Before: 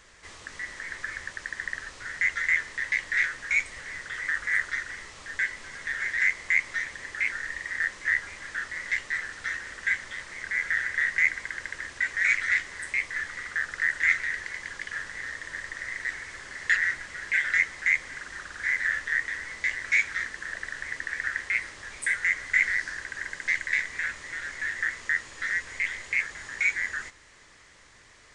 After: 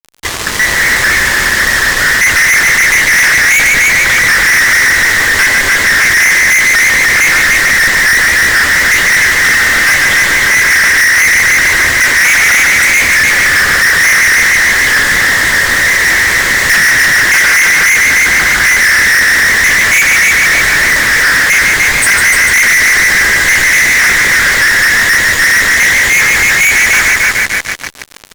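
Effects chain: multi-head echo 0.149 s, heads first and second, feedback 51%, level -8 dB; fuzz box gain 43 dB, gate -45 dBFS; gain +7 dB

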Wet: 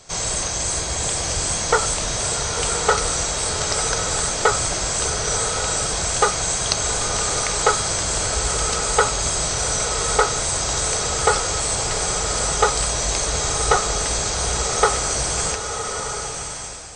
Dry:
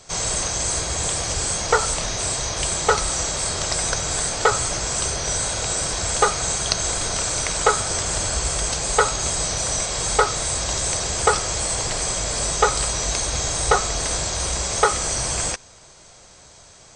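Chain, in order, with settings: bloom reverb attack 1.17 s, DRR 4.5 dB

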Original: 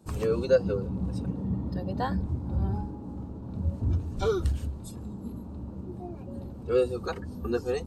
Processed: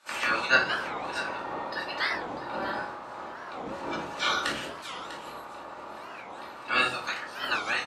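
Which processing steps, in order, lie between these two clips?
spectral limiter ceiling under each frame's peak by 30 dB; band-pass 1900 Hz, Q 1.1; on a send: echo 0.647 s -13 dB; on the sum: shoebox room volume 380 m³, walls furnished, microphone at 2.5 m; record warp 45 rpm, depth 250 cents; gain +1.5 dB

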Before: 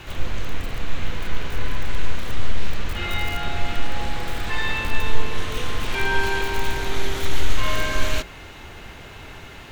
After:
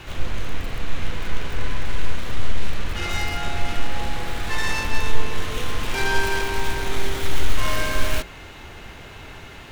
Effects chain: tracing distortion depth 0.25 ms

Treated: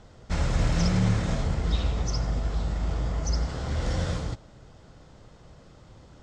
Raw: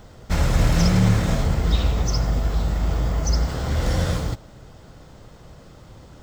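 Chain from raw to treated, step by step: LPF 8200 Hz 24 dB/oct; gain -6 dB

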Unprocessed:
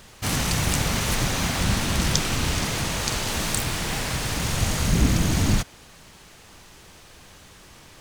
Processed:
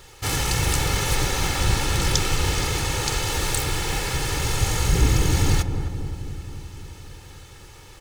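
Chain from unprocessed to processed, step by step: comb 2.3 ms, depth 71%; on a send: darkening echo 0.263 s, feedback 69%, low-pass 870 Hz, level -7 dB; on the sum: gain -1 dB

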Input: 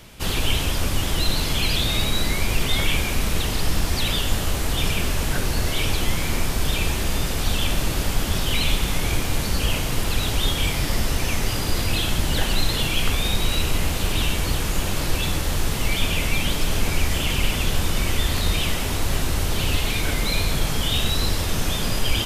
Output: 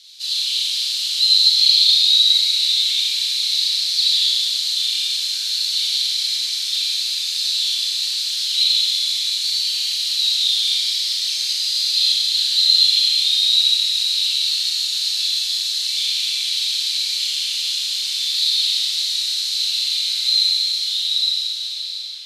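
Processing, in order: ending faded out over 3.00 s; in parallel at +0.5 dB: limiter -17 dBFS, peak gain reduction 10.5 dB; on the sum: ladder band-pass 4300 Hz, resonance 80%; high shelf 4100 Hz +8 dB; on a send: tape echo 0.686 s, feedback 81%, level -8 dB, low-pass 3300 Hz; on the sum: Schroeder reverb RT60 2.4 s, combs from 29 ms, DRR -5.5 dB

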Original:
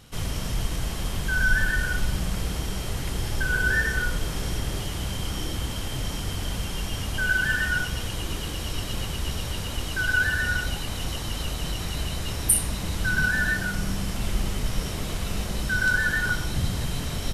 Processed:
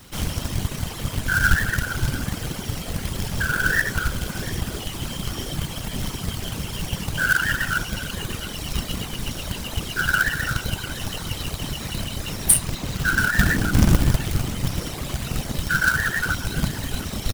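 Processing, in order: reverb removal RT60 1.8 s; 13.39–14.16 low shelf 390 Hz +11.5 dB; whisperiser; companded quantiser 4-bit; outdoor echo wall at 120 m, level -16 dB; gain +4 dB

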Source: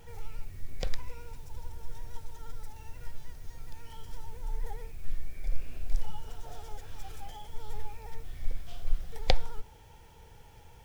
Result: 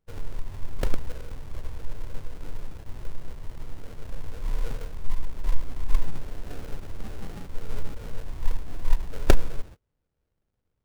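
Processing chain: gate -42 dBFS, range -32 dB; sample-rate reducer 1000 Hz, jitter 20%; gain +6.5 dB

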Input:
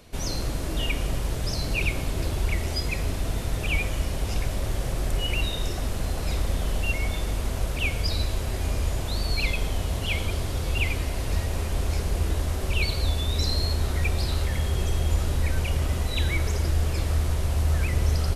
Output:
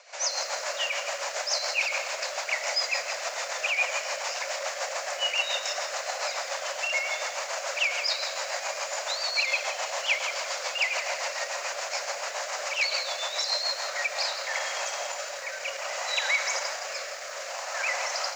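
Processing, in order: one-sided fold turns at -18 dBFS; bell 3400 Hz -10 dB 0.64 oct; AGC gain up to 5.5 dB; tilt shelf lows -4 dB, about 810 Hz; limiter -20.5 dBFS, peak gain reduction 11 dB; reverb RT60 0.90 s, pre-delay 7 ms, DRR 18.5 dB; rotary speaker horn 7 Hz, later 0.6 Hz, at 13.71; Chebyshev band-pass 550–7100 Hz, order 5; lo-fi delay 0.166 s, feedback 35%, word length 9-bit, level -10 dB; gain +8 dB

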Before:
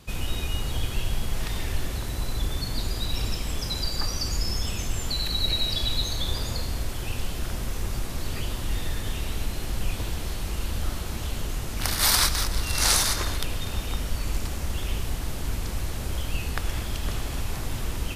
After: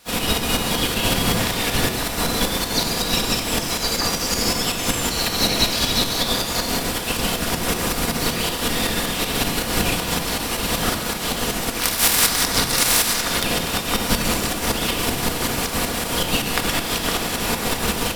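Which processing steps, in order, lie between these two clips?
spectral limiter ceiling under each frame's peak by 24 dB; notch 6500 Hz, Q 15; harmoniser +5 st -9 dB, +7 st -13 dB; tremolo saw up 5.3 Hz, depth 60%; on a send: reverb RT60 1.0 s, pre-delay 4 ms, DRR 5 dB; on the sum: gain +5 dB

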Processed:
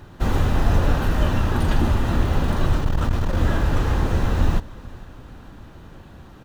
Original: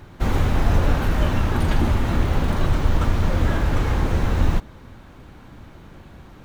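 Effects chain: notch 2200 Hz, Q 9.6; on a send: feedback echo 0.458 s, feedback 53%, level -21.5 dB; 2.77–3.37 on the sum: core saturation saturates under 64 Hz

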